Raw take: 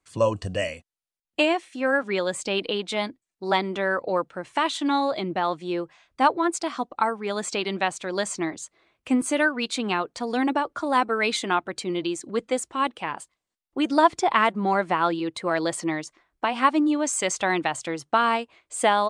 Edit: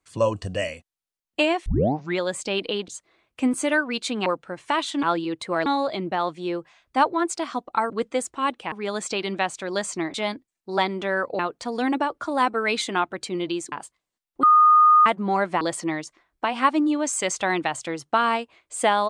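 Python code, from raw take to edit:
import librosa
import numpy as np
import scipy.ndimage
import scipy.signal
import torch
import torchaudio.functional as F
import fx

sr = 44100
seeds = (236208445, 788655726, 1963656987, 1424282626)

y = fx.edit(x, sr, fx.tape_start(start_s=1.66, length_s=0.52),
    fx.swap(start_s=2.88, length_s=1.25, other_s=8.56, other_length_s=1.38),
    fx.move(start_s=12.27, length_s=0.82, to_s=7.14),
    fx.bleep(start_s=13.8, length_s=0.63, hz=1230.0, db=-11.0),
    fx.move(start_s=14.98, length_s=0.63, to_s=4.9), tone=tone)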